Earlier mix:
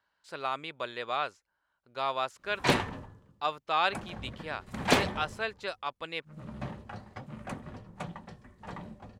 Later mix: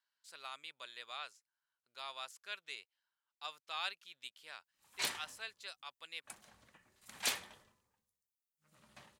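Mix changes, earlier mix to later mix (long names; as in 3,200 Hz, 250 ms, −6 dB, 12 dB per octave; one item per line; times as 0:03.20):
background: entry +2.35 s
master: add first-order pre-emphasis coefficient 0.97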